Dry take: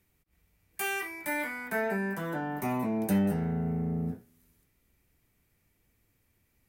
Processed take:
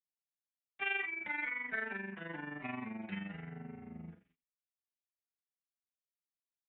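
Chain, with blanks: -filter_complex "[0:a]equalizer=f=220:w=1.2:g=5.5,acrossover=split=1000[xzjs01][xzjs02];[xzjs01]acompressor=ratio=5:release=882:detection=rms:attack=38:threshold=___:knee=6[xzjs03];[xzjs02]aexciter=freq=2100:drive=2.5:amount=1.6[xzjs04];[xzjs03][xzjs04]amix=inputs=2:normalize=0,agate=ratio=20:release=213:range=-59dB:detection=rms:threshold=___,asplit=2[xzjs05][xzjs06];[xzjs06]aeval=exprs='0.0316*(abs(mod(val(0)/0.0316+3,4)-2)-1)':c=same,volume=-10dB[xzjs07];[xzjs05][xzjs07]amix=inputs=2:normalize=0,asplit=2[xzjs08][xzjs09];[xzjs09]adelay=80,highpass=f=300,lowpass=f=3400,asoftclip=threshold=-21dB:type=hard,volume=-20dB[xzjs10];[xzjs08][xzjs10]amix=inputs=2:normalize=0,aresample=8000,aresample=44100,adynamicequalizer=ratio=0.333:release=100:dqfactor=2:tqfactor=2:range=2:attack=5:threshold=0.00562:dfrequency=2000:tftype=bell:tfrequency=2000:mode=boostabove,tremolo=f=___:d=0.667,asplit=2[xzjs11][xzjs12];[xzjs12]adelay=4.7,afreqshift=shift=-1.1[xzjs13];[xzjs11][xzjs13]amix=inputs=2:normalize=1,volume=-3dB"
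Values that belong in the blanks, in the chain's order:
-39dB, -55dB, 23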